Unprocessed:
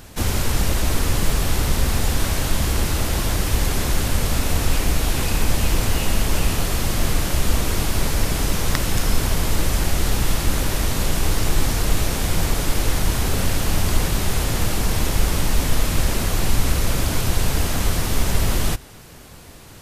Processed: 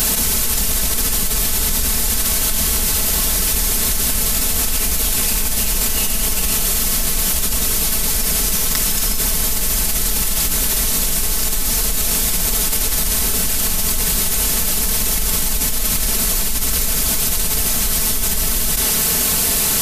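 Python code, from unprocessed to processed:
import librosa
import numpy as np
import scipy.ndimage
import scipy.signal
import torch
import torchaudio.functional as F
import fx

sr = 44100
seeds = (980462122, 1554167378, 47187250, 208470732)

y = librosa.effects.preemphasis(x, coef=0.8, zi=[0.0])
y = y + 0.73 * np.pad(y, (int(4.6 * sr / 1000.0), 0))[:len(y)]
y = fx.env_flatten(y, sr, amount_pct=100)
y = y * 10.0 ** (2.5 / 20.0)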